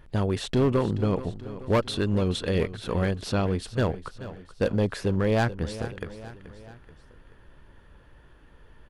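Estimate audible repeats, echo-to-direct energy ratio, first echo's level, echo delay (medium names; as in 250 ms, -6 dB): 3, -13.0 dB, -14.5 dB, 431 ms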